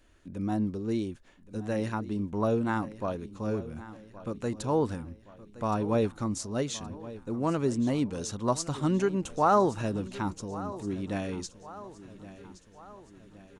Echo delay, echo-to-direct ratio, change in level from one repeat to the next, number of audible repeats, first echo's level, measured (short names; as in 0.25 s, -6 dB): 1.12 s, -15.0 dB, -5.5 dB, 4, -16.5 dB